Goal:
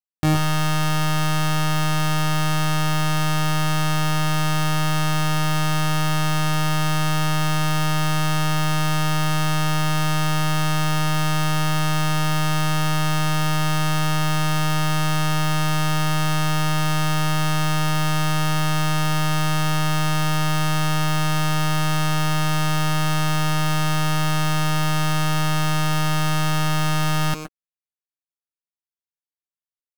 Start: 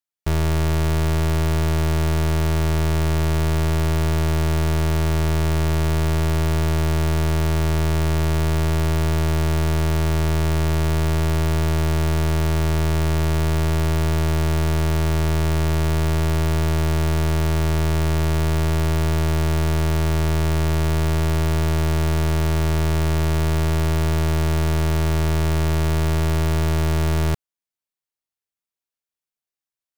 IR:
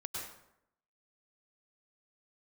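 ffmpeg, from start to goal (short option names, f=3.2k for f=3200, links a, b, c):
-filter_complex "[0:a]asetrate=85689,aresample=44100,atempo=0.514651,asplit=2[a][b];[1:a]atrim=start_sample=2205,atrim=end_sample=6174[c];[b][c]afir=irnorm=-1:irlink=0,volume=0dB[d];[a][d]amix=inputs=2:normalize=0,aeval=exprs='0.316*(cos(1*acos(clip(val(0)/0.316,-1,1)))-cos(1*PI/2))+0.0251*(cos(6*acos(clip(val(0)/0.316,-1,1)))-cos(6*PI/2))+0.0562*(cos(7*acos(clip(val(0)/0.316,-1,1)))-cos(7*PI/2))':c=same,volume=-3.5dB"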